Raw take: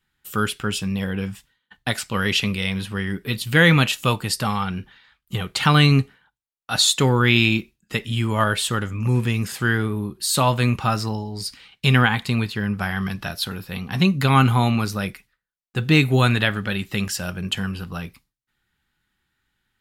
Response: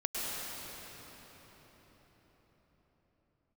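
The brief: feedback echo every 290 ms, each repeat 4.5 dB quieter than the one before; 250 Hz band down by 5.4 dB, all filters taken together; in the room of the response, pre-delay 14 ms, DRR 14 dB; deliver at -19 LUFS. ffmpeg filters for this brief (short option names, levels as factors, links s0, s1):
-filter_complex "[0:a]equalizer=f=250:t=o:g=-8,aecho=1:1:290|580|870|1160|1450|1740|2030|2320|2610:0.596|0.357|0.214|0.129|0.0772|0.0463|0.0278|0.0167|0.01,asplit=2[s0][s1];[1:a]atrim=start_sample=2205,adelay=14[s2];[s1][s2]afir=irnorm=-1:irlink=0,volume=0.0944[s3];[s0][s3]amix=inputs=2:normalize=0,volume=1.19"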